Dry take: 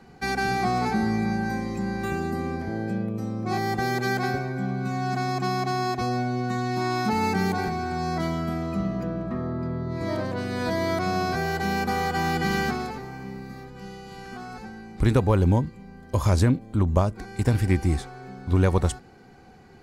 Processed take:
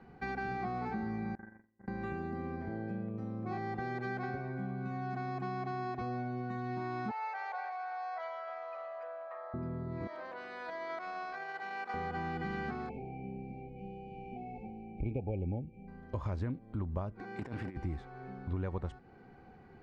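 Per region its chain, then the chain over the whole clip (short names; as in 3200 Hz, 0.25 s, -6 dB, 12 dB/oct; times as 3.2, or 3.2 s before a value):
1.35–1.88 gate -24 dBFS, range -48 dB + resonant high shelf 2600 Hz -13 dB, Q 3 + flutter echo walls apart 7.8 m, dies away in 0.29 s
7.11–9.54 Chebyshev band-pass 540–6900 Hz, order 5 + high shelf 5500 Hz -8.5 dB
10.07–11.94 HPF 730 Hz + gate -30 dBFS, range -12 dB + fast leveller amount 50%
12.89–15.88 brick-wall FIR band-stop 860–2200 Hz + resonant high shelf 3000 Hz -12 dB, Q 3
17.2–17.77 HPF 180 Hz + negative-ratio compressor -29 dBFS, ratio -0.5 + hard clip -21.5 dBFS
whole clip: LPF 2300 Hz 12 dB/oct; compressor 2.5:1, threshold -32 dBFS; gain -5.5 dB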